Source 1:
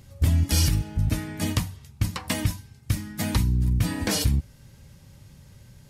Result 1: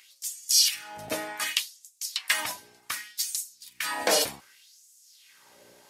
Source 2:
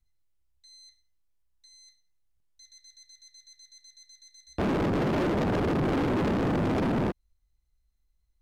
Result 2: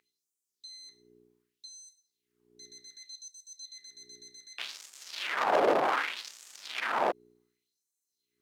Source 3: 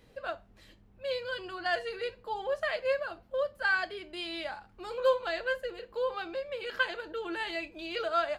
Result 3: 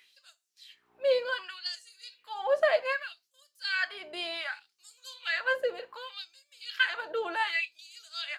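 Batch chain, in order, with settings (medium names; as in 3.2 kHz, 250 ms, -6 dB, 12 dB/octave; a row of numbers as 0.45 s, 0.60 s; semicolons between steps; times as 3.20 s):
mains buzz 60 Hz, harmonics 7, -46 dBFS -7 dB/octave; LFO high-pass sine 0.66 Hz 560–7400 Hz; trim +2.5 dB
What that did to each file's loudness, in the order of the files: -1.5 LU, -3.5 LU, +2.0 LU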